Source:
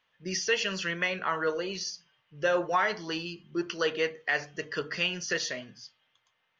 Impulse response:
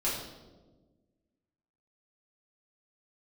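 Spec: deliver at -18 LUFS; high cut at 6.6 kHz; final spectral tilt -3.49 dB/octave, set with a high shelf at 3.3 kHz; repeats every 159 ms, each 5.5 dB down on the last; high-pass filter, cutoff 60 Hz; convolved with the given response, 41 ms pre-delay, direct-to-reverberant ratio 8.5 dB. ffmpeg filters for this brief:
-filter_complex "[0:a]highpass=60,lowpass=6600,highshelf=f=3300:g=-4,aecho=1:1:159|318|477|636|795|954|1113:0.531|0.281|0.149|0.079|0.0419|0.0222|0.0118,asplit=2[s0][s1];[1:a]atrim=start_sample=2205,adelay=41[s2];[s1][s2]afir=irnorm=-1:irlink=0,volume=0.158[s3];[s0][s3]amix=inputs=2:normalize=0,volume=3.76"

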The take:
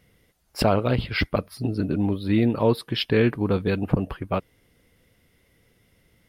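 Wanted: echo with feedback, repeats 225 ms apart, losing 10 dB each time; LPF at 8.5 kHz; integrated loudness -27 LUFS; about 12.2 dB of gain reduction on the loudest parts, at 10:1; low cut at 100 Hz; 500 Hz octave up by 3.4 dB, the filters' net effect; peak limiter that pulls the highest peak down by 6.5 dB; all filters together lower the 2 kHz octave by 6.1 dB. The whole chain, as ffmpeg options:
-af "highpass=100,lowpass=8500,equalizer=f=500:t=o:g=4.5,equalizer=f=2000:t=o:g=-8,acompressor=threshold=0.0562:ratio=10,alimiter=limit=0.1:level=0:latency=1,aecho=1:1:225|450|675|900:0.316|0.101|0.0324|0.0104,volume=1.78"

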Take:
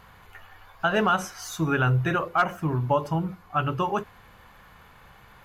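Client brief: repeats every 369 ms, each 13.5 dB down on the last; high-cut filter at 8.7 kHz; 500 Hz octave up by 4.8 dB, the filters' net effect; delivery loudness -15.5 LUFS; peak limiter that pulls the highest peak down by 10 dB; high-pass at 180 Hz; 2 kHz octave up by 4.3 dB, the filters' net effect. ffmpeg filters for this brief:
-af "highpass=180,lowpass=8700,equalizer=f=500:t=o:g=6,equalizer=f=2000:t=o:g=6,alimiter=limit=0.133:level=0:latency=1,aecho=1:1:369|738:0.211|0.0444,volume=4.47"

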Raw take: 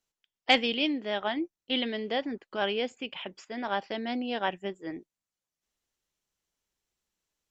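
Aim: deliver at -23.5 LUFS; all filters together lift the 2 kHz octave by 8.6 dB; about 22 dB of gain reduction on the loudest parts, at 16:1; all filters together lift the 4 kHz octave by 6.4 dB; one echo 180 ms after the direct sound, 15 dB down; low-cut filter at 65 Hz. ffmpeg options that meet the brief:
-af "highpass=65,equalizer=f=2000:t=o:g=9,equalizer=f=4000:t=o:g=4.5,acompressor=threshold=0.0251:ratio=16,aecho=1:1:180:0.178,volume=4.73"

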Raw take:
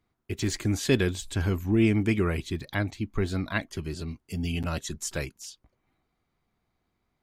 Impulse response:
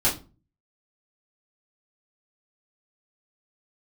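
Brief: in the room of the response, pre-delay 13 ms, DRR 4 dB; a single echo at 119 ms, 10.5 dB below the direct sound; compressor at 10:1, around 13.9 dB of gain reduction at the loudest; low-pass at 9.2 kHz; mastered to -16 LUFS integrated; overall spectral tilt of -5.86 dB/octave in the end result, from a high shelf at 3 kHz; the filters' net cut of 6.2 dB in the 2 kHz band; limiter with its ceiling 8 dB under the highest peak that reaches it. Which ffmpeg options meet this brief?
-filter_complex "[0:a]lowpass=9200,equalizer=f=2000:t=o:g=-5,highshelf=f=3000:g=-8,acompressor=threshold=0.0251:ratio=10,alimiter=level_in=2.11:limit=0.0631:level=0:latency=1,volume=0.473,aecho=1:1:119:0.299,asplit=2[s0][s1];[1:a]atrim=start_sample=2205,adelay=13[s2];[s1][s2]afir=irnorm=-1:irlink=0,volume=0.141[s3];[s0][s3]amix=inputs=2:normalize=0,volume=12.6"

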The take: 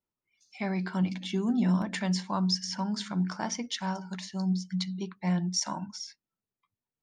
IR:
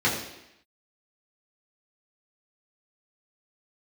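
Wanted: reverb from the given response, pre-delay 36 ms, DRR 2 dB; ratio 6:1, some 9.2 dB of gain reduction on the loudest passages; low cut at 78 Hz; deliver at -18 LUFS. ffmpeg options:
-filter_complex "[0:a]highpass=78,acompressor=threshold=0.0224:ratio=6,asplit=2[s0][s1];[1:a]atrim=start_sample=2205,adelay=36[s2];[s1][s2]afir=irnorm=-1:irlink=0,volume=0.141[s3];[s0][s3]amix=inputs=2:normalize=0,volume=7.08"

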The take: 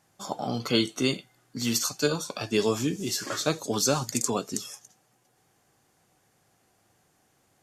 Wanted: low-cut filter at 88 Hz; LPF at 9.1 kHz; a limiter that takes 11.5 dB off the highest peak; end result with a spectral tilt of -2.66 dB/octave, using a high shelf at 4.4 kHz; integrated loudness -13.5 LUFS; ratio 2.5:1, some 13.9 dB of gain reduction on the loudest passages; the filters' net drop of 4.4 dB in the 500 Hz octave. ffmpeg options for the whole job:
-af "highpass=88,lowpass=9100,equalizer=f=500:t=o:g=-5.5,highshelf=f=4400:g=9,acompressor=threshold=0.01:ratio=2.5,volume=21.1,alimiter=limit=0.794:level=0:latency=1"

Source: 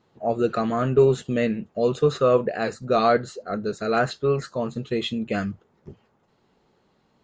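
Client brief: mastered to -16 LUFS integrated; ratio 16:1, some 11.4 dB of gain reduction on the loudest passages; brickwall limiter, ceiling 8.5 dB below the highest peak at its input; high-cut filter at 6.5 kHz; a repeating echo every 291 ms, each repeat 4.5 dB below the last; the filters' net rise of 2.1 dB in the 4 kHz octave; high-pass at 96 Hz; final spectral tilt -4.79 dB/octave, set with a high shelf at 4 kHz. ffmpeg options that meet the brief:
-af "highpass=96,lowpass=6500,highshelf=f=4000:g=-6,equalizer=f=4000:t=o:g=6,acompressor=threshold=0.0631:ratio=16,alimiter=limit=0.0668:level=0:latency=1,aecho=1:1:291|582|873|1164|1455|1746|2037|2328|2619:0.596|0.357|0.214|0.129|0.0772|0.0463|0.0278|0.0167|0.01,volume=6.68"

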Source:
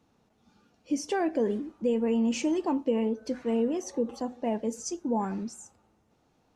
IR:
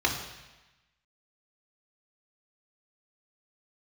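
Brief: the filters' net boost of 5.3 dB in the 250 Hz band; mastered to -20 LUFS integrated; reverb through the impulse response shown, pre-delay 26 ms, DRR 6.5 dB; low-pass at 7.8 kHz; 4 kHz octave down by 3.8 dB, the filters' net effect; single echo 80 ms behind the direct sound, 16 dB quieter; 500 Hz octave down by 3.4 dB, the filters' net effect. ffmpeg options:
-filter_complex "[0:a]lowpass=7800,equalizer=f=250:t=o:g=7.5,equalizer=f=500:t=o:g=-6.5,equalizer=f=4000:t=o:g=-5.5,aecho=1:1:80:0.158,asplit=2[s0][s1];[1:a]atrim=start_sample=2205,adelay=26[s2];[s1][s2]afir=irnorm=-1:irlink=0,volume=0.119[s3];[s0][s3]amix=inputs=2:normalize=0,volume=1.78"

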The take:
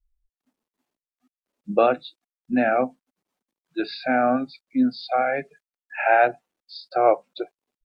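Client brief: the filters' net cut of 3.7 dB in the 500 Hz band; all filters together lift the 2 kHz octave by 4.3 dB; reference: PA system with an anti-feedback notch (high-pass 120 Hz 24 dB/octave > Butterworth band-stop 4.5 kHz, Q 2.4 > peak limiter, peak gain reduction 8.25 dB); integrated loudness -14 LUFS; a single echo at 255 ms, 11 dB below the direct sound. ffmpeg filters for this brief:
-af "highpass=f=120:w=0.5412,highpass=f=120:w=1.3066,asuperstop=centerf=4500:order=8:qfactor=2.4,equalizer=f=500:t=o:g=-5.5,equalizer=f=2000:t=o:g=6.5,aecho=1:1:255:0.282,volume=4.22,alimiter=limit=0.944:level=0:latency=1"

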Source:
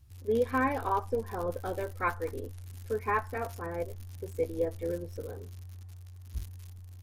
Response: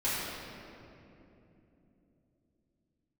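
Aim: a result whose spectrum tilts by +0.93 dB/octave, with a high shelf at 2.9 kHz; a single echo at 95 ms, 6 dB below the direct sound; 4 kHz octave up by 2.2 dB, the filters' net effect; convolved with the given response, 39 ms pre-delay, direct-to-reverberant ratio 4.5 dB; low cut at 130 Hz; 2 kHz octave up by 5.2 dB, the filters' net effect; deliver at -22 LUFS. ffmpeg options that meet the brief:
-filter_complex "[0:a]highpass=130,equalizer=f=2000:t=o:g=8.5,highshelf=f=2900:g=-8.5,equalizer=f=4000:t=o:g=6.5,aecho=1:1:95:0.501,asplit=2[s0][s1];[1:a]atrim=start_sample=2205,adelay=39[s2];[s1][s2]afir=irnorm=-1:irlink=0,volume=0.2[s3];[s0][s3]amix=inputs=2:normalize=0,volume=2.51"

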